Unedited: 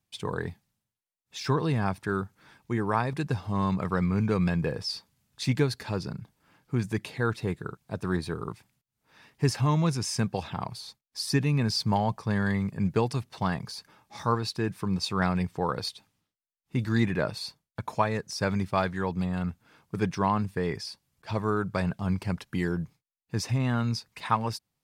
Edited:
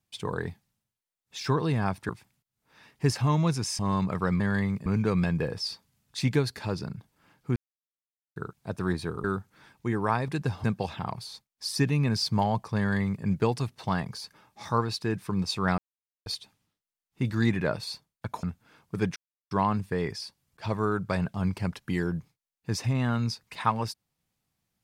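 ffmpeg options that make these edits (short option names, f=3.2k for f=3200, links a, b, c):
-filter_complex "[0:a]asplit=13[a][b][c][d][e][f][g][h][i][j][k][l][m];[a]atrim=end=2.092[n];[b]atrim=start=8.478:end=10.182[o];[c]atrim=start=3.488:end=4.102[p];[d]atrim=start=12.318:end=12.782[q];[e]atrim=start=4.098:end=6.8,asetpts=PTS-STARTPTS,afade=t=out:st=2.698:d=0.004:c=hsin[r];[f]atrim=start=6.8:end=7.6,asetpts=PTS-STARTPTS,volume=0[s];[g]atrim=start=7.6:end=8.482,asetpts=PTS-STARTPTS,afade=t=in:d=0.004:c=hsin[t];[h]atrim=start=2.088:end=3.492[u];[i]atrim=start=10.178:end=15.32,asetpts=PTS-STARTPTS,afade=t=out:st=5.138:d=0.004:c=hsin[v];[j]atrim=start=15.32:end=15.8,asetpts=PTS-STARTPTS,volume=0[w];[k]atrim=start=15.8:end=17.972,asetpts=PTS-STARTPTS,afade=t=in:d=0.004:c=hsin[x];[l]atrim=start=19.428:end=20.16,asetpts=PTS-STARTPTS,afade=t=out:st=0.728:d=0.004:c=hsin,apad=pad_dur=0.35[y];[m]atrim=start=20.16,asetpts=PTS-STARTPTS,afade=t=in:d=0.004:c=hsin[z];[n][o]acrossfade=d=0.004:c1=hsin:c2=hsin[aa];[aa][p]acrossfade=d=0.004:c1=hsin:c2=hsin[ab];[ab][q]acrossfade=d=0.004:c1=hsin:c2=hsin[ac];[r][s][t]concat=n=3:v=0:a=1[ad];[ac][ad]acrossfade=d=0.004:c1=hsin:c2=hsin[ae];[ae][u]acrossfade=d=0.004:c1=hsin:c2=hsin[af];[v][w][x]concat=n=3:v=0:a=1[ag];[af][ag]acrossfade=d=0.004:c1=hsin:c2=hsin[ah];[y][z]concat=n=2:v=0:a=1[ai];[ah][ai]acrossfade=d=0.004:c1=hsin:c2=hsin"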